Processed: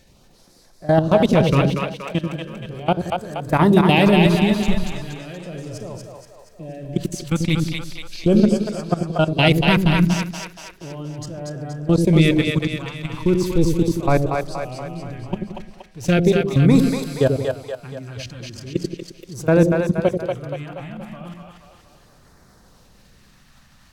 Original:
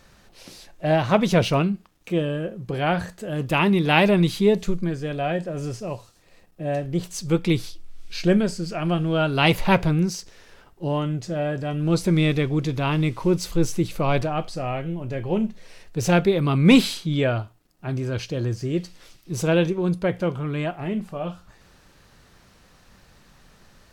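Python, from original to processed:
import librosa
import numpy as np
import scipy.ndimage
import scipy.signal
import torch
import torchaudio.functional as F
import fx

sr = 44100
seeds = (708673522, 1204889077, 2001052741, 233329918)

p1 = fx.level_steps(x, sr, step_db=20)
p2 = fx.filter_lfo_notch(p1, sr, shape='sine', hz=0.37, low_hz=410.0, high_hz=3100.0, q=0.93)
p3 = p2 + fx.echo_split(p2, sr, split_hz=480.0, low_ms=87, high_ms=237, feedback_pct=52, wet_db=-3.0, dry=0)
y = F.gain(torch.from_numpy(p3), 7.0).numpy()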